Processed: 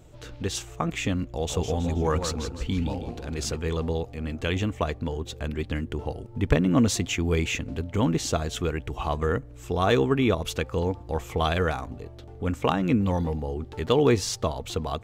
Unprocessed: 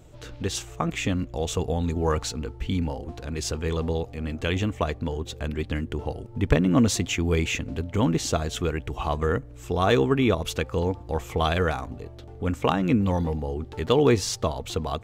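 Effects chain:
0:01.32–0:03.56: feedback echo with a swinging delay time 160 ms, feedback 42%, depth 172 cents, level −7.5 dB
level −1 dB

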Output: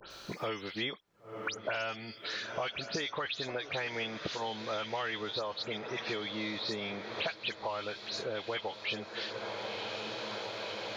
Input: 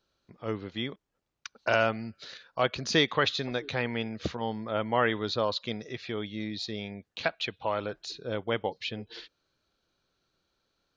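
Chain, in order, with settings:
every frequency bin delayed by itself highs late, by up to 107 ms
downward compressor, threshold −28 dBFS, peak gain reduction 8.5 dB
low-shelf EQ 350 Hz −11.5 dB
feedback delay with all-pass diffusion 1,042 ms, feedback 67%, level −16 dB
multiband upward and downward compressor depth 100%

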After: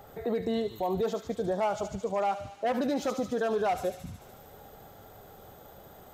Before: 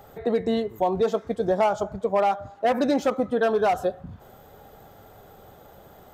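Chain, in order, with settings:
brickwall limiter −19.5 dBFS, peak gain reduction 8 dB
delay with a high-pass on its return 73 ms, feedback 77%, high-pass 4,100 Hz, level −3 dB
level −2 dB

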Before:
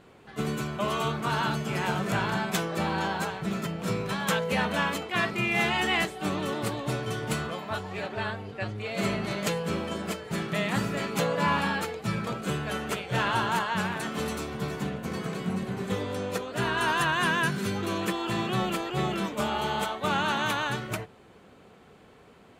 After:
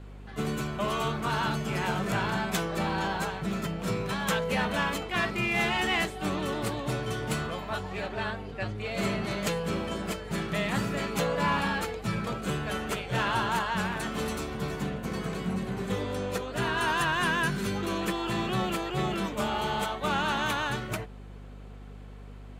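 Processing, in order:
mains hum 50 Hz, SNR 15 dB
in parallel at −8 dB: hard clipping −28.5 dBFS, distortion −8 dB
on the sum: level −3 dB

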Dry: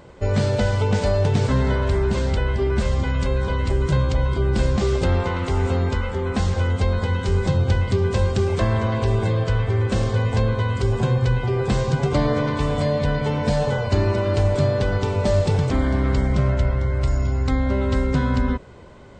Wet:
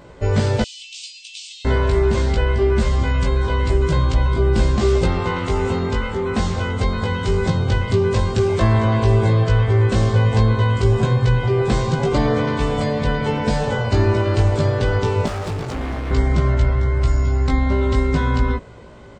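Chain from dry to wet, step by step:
0:00.62–0:01.65: Butterworth high-pass 2,600 Hz 72 dB per octave
0:15.26–0:16.11: hard clipping −26 dBFS, distortion −15 dB
double-tracking delay 18 ms −3 dB
level +1 dB

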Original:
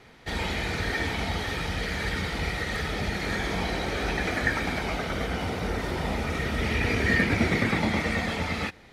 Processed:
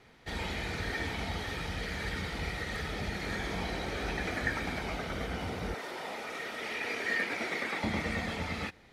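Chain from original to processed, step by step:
0:05.74–0:07.84: high-pass filter 440 Hz 12 dB per octave
level −6.5 dB

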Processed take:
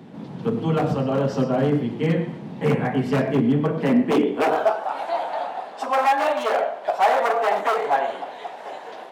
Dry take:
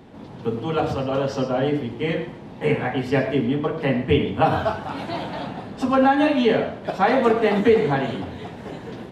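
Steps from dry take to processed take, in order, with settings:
wave folding −15 dBFS
high-pass filter sweep 160 Hz → 710 Hz, 0:03.70–0:04.94
dynamic equaliser 3,700 Hz, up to −6 dB, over −40 dBFS, Q 0.85

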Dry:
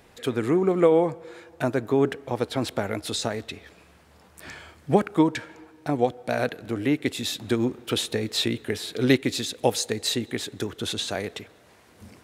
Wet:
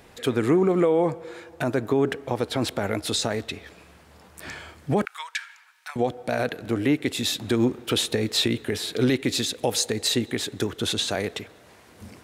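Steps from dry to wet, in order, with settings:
0:05.05–0:05.96: inverse Chebyshev high-pass filter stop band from 290 Hz, stop band 70 dB
brickwall limiter −15.5 dBFS, peak gain reduction 10 dB
level +3.5 dB

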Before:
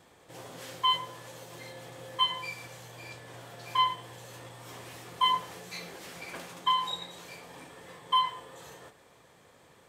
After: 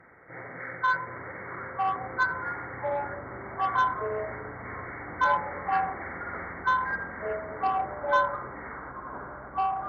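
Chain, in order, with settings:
hearing-aid frequency compression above 1,200 Hz 4 to 1
harmonic generator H 5 −23 dB, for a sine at −13.5 dBFS
delay with pitch and tempo change per echo 674 ms, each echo −5 semitones, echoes 3

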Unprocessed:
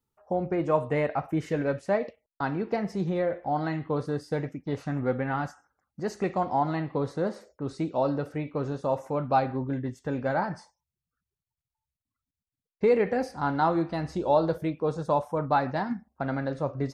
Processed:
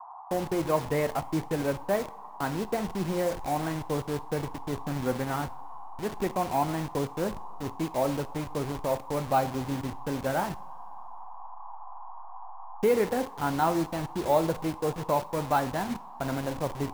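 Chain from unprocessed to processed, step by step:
hold until the input has moved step −31.5 dBFS
coupled-rooms reverb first 0.46 s, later 2.7 s, from −18 dB, DRR 15 dB
noise in a band 730–1,100 Hz −44 dBFS
level −1 dB

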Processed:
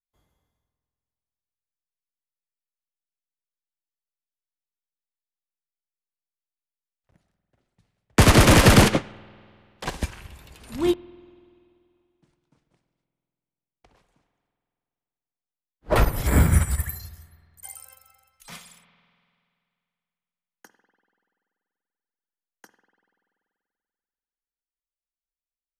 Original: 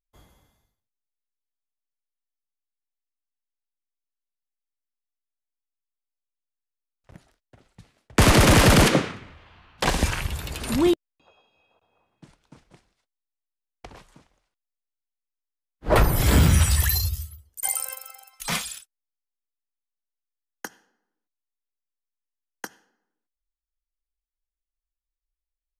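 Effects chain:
gain on a spectral selection 0:16.27–0:16.99, 2,400–7,000 Hz −11 dB
spring reverb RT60 2.4 s, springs 48 ms, chirp 65 ms, DRR 9 dB
expander for the loud parts 2.5 to 1, over −25 dBFS
level +3.5 dB

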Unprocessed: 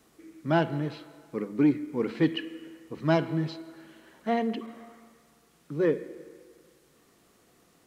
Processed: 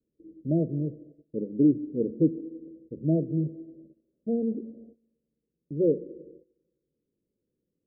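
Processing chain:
adaptive Wiener filter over 41 samples
noise gate −52 dBFS, range −18 dB
Butterworth low-pass 600 Hz 96 dB per octave
level +2 dB

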